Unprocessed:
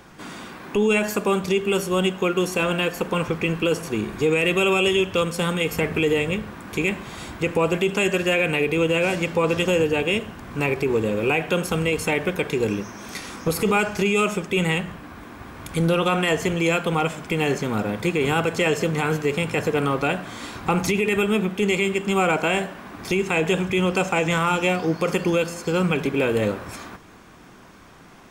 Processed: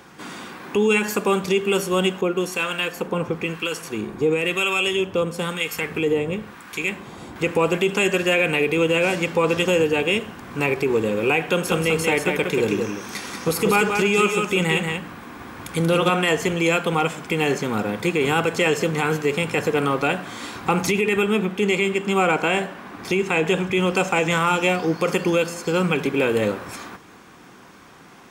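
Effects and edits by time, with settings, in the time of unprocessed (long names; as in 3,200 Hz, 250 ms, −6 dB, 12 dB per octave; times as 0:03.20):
0:02.21–0:07.36: two-band tremolo in antiphase 1 Hz, crossover 980 Hz
0:11.48–0:16.10: single-tap delay 184 ms −5 dB
0:21.01–0:23.80: high-shelf EQ 5,100 Hz −4.5 dB
whole clip: high-pass filter 160 Hz 6 dB per octave; notch filter 630 Hz, Q 12; level +2 dB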